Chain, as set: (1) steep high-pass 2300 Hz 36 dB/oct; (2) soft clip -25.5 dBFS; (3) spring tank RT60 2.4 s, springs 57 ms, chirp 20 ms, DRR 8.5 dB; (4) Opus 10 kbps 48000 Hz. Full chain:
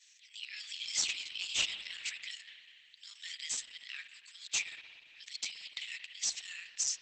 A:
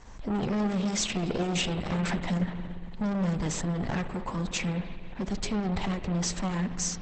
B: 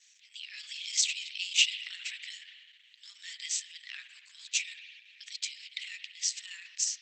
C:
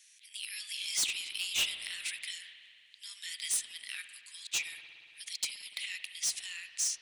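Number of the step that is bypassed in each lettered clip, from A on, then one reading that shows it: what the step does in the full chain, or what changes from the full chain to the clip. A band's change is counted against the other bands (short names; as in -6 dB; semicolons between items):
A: 1, 250 Hz band +38.0 dB; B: 2, distortion -8 dB; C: 4, crest factor change -7.5 dB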